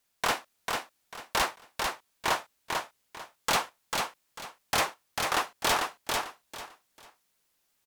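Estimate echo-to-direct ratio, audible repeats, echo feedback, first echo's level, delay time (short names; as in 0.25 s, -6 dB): -3.5 dB, 3, 25%, -4.0 dB, 0.445 s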